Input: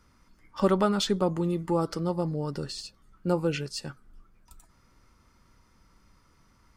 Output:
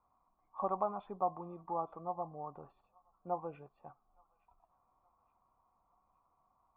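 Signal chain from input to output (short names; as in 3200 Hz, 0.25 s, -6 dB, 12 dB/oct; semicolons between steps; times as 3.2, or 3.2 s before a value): vocal tract filter a; thin delay 0.869 s, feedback 43%, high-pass 1500 Hz, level -21.5 dB; gain +5.5 dB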